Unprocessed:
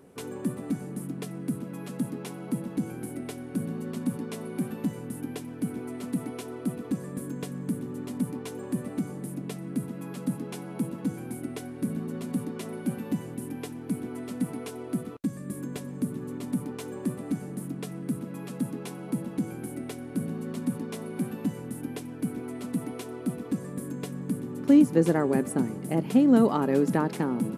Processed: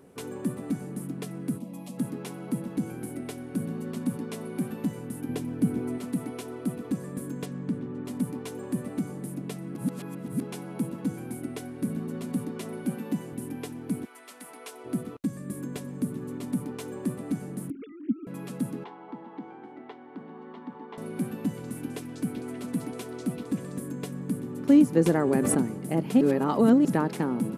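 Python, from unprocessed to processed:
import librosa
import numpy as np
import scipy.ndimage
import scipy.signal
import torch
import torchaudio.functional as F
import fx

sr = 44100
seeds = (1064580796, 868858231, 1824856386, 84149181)

y = fx.fixed_phaser(x, sr, hz=400.0, stages=6, at=(1.57, 1.97), fade=0.02)
y = fx.low_shelf(y, sr, hz=460.0, db=7.5, at=(5.29, 5.98))
y = fx.lowpass(y, sr, hz=fx.line((7.45, 6700.0), (8.04, 2600.0)), slope=12, at=(7.45, 8.04), fade=0.02)
y = fx.highpass(y, sr, hz=140.0, slope=24, at=(12.85, 13.33))
y = fx.highpass(y, sr, hz=fx.line((14.04, 1200.0), (14.84, 560.0)), slope=12, at=(14.04, 14.84), fade=0.02)
y = fx.sine_speech(y, sr, at=(17.7, 18.27))
y = fx.cabinet(y, sr, low_hz=460.0, low_slope=12, high_hz=2900.0, hz=(570.0, 870.0, 1500.0, 2500.0), db=(-10, 9, -5, -10), at=(18.84, 20.98))
y = fx.echo_stepped(y, sr, ms=193, hz=5400.0, octaves=-0.7, feedback_pct=70, wet_db=-3.0, at=(21.55, 23.79), fade=0.02)
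y = fx.pre_swell(y, sr, db_per_s=20.0, at=(25.06, 25.66))
y = fx.edit(y, sr, fx.reverse_span(start_s=9.75, length_s=0.66),
    fx.reverse_span(start_s=26.21, length_s=0.64), tone=tone)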